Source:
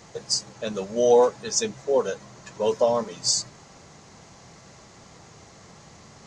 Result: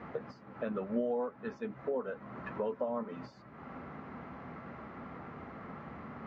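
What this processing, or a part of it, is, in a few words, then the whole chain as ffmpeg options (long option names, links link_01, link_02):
bass amplifier: -af "acompressor=threshold=-37dB:ratio=5,highpass=65,equalizer=frequency=66:width_type=q:width=4:gain=4,equalizer=frequency=110:width_type=q:width=4:gain=-7,equalizer=frequency=250:width_type=q:width=4:gain=10,equalizer=frequency=1300:width_type=q:width=4:gain=7,lowpass=frequency=2200:width=0.5412,lowpass=frequency=2200:width=1.3066,volume=2dB"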